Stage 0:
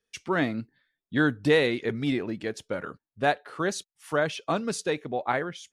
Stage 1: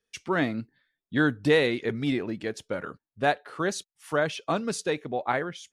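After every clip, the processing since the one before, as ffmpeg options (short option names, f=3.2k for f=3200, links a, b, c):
-af anull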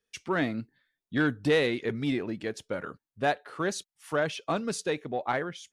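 -af "asoftclip=type=tanh:threshold=-13.5dB,volume=-1.5dB"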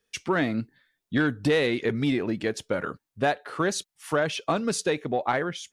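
-af "acompressor=threshold=-29dB:ratio=2.5,volume=7dB"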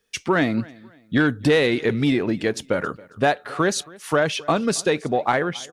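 -af "aecho=1:1:273|546:0.0708|0.0234,volume=5dB"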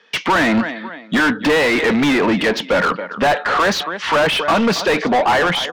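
-filter_complex "[0:a]highpass=f=180:w=0.5412,highpass=f=180:w=1.3066,equalizer=f=180:t=q:w=4:g=5,equalizer=f=390:t=q:w=4:g=-5,equalizer=f=960:t=q:w=4:g=6,equalizer=f=1.9k:t=q:w=4:g=3,equalizer=f=3.1k:t=q:w=4:g=4,lowpass=f=5.3k:w=0.5412,lowpass=f=5.3k:w=1.3066,asplit=2[a][b];[b]highpass=f=720:p=1,volume=33dB,asoftclip=type=tanh:threshold=-3dB[c];[a][c]amix=inputs=2:normalize=0,lowpass=f=2k:p=1,volume=-6dB,volume=-3.5dB"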